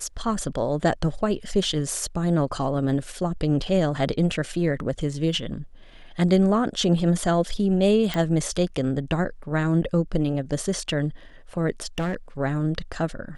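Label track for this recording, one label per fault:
8.140000	8.140000	pop -12 dBFS
11.980000	12.150000	clipped -22 dBFS

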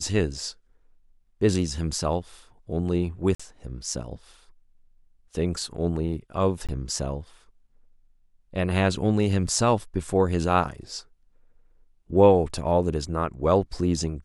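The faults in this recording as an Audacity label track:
3.350000	3.400000	dropout 45 ms
6.670000	6.690000	dropout 17 ms

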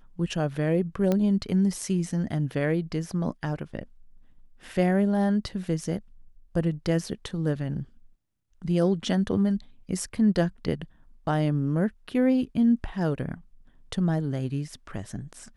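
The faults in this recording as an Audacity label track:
1.120000	1.120000	pop -13 dBFS

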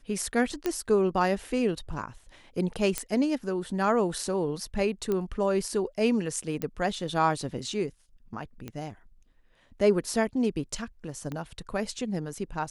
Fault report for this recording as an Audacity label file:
0.660000	0.660000	pop -14 dBFS
2.980000	2.980000	pop -12 dBFS
5.120000	5.120000	pop -17 dBFS
6.620000	6.620000	pop -16 dBFS
8.680000	8.680000	pop -23 dBFS
11.320000	11.320000	pop -22 dBFS

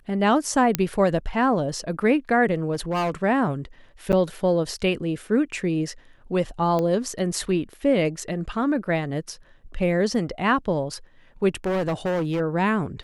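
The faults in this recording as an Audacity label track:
0.750000	0.750000	pop -4 dBFS
2.710000	3.110000	clipped -20.5 dBFS
4.120000	4.130000	dropout 8.2 ms
6.790000	6.790000	pop -14 dBFS
11.640000	12.410000	clipped -21 dBFS

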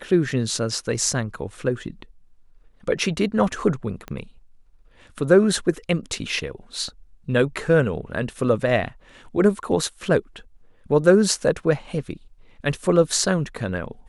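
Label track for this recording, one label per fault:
4.080000	4.080000	pop -19 dBFS

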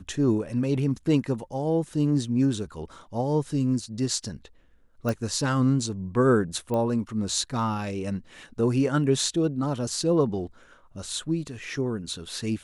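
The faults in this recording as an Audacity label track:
5.090000	5.090000	pop
6.740000	6.740000	pop -18 dBFS

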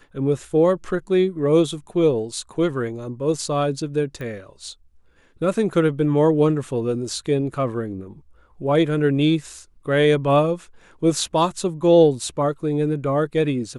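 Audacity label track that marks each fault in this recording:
4.210000	4.210000	pop -22 dBFS

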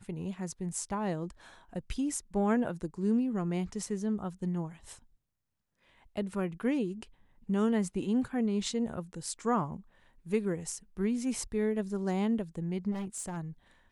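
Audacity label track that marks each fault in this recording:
12.910000	13.380000	clipped -33 dBFS

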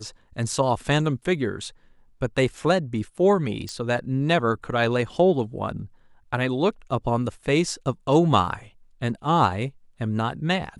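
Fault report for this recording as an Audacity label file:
3.690000	3.690000	pop -20 dBFS

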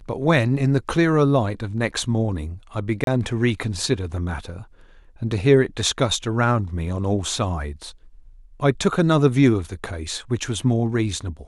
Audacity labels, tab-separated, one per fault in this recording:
3.040000	3.070000	dropout 32 ms

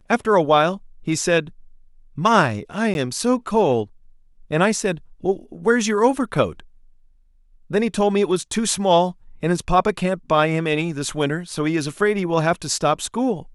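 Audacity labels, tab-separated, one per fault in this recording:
2.940000	2.950000	dropout 11 ms

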